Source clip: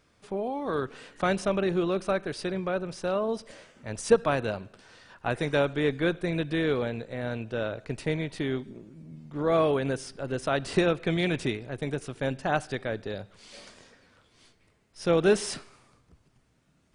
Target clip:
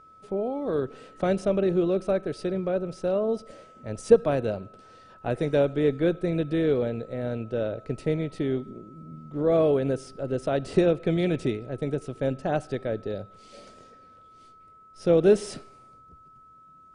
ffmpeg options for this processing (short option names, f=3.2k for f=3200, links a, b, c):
-af "aeval=exprs='val(0)+0.00708*sin(2*PI*1300*n/s)':c=same,lowshelf=f=750:t=q:w=1.5:g=7.5,volume=-5.5dB"